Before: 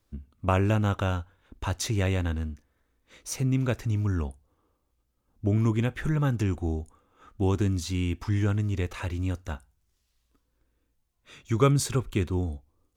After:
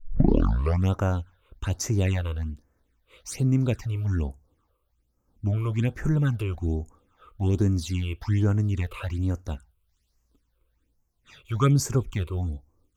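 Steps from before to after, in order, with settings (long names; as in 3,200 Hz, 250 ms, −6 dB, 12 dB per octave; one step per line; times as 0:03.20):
turntable start at the beginning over 0.93 s
all-pass phaser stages 8, 1.2 Hz, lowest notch 220–3,700 Hz
level +2 dB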